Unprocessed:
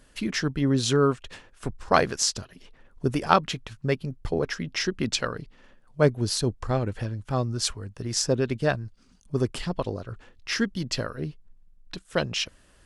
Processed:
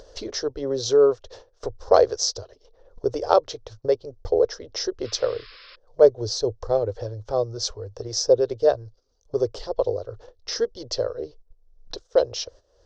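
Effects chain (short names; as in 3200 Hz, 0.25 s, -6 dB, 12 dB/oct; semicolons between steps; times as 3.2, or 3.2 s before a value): EQ curve 110 Hz 0 dB, 170 Hz -27 dB, 480 Hz +14 dB, 900 Hz +1 dB, 2500 Hz -15 dB, 3800 Hz 0 dB, 5900 Hz +5 dB, 10000 Hz -30 dB; gate -45 dBFS, range -15 dB; upward compressor, threshold -26 dBFS; painted sound noise, 5.04–5.76, 1000–5400 Hz -45 dBFS; gain -2 dB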